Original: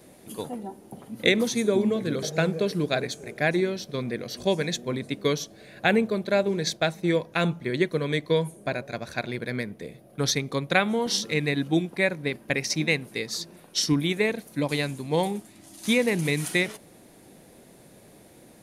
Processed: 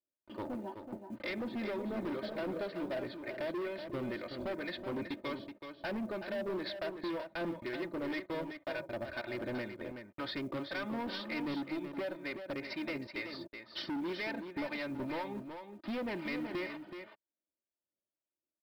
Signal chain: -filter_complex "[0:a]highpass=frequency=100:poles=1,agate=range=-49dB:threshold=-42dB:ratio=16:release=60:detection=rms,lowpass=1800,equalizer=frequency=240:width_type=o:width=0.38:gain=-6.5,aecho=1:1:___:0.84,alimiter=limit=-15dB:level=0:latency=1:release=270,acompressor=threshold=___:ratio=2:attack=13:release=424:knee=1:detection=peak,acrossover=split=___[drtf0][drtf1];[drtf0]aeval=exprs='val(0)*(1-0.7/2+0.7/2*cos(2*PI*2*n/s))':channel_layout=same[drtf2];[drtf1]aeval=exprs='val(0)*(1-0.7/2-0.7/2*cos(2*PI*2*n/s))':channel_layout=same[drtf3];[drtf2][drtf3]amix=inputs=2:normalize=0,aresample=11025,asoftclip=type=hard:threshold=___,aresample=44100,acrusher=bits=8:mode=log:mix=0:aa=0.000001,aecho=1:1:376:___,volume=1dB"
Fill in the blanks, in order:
3.3, -30dB, 720, -36dB, 0.398